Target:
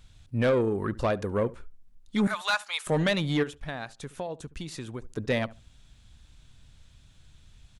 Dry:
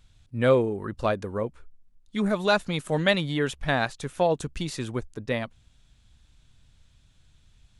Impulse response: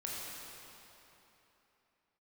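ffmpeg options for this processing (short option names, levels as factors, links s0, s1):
-filter_complex "[0:a]asettb=1/sr,asplit=3[s0][s1][s2];[s0]atrim=end=2.274[s3];[s1]atrim=start=2.27:end=2.87,asetpts=PTS-STARTPTS,afade=t=in:d=0.004:c=qsin,afade=t=out:st=0.596:d=0.004:c=qsin,highpass=f=920:w=0.5412,highpass=f=920:w=1.3066[s4];[s2]atrim=start=2.866[s5];[s3][s4]acrossfade=d=0.004:c1=hsin:c2=qsin[s6];[s6][s5]acrossfade=d=0.004:c1=qsin:c2=hsin,asplit=3[s7][s8][s9];[s7]afade=t=out:st=3.42:d=0.02[s10];[s8]acompressor=threshold=0.00794:ratio=3,afade=t=in:st=3.42:d=0.02,afade=t=out:st=5.03:d=0.02[s11];[s9]afade=t=in:st=5.03:d=0.02[s12];[s10][s11][s12]amix=inputs=3:normalize=0,alimiter=limit=0.168:level=0:latency=1:release=273,asoftclip=type=tanh:threshold=0.0841,asplit=2[s13][s14];[s14]adelay=71,lowpass=f=1200:p=1,volume=0.119,asplit=2[s15][s16];[s16]adelay=71,lowpass=f=1200:p=1,volume=0.21[s17];[s13][s15][s17]amix=inputs=3:normalize=0,volume=1.58"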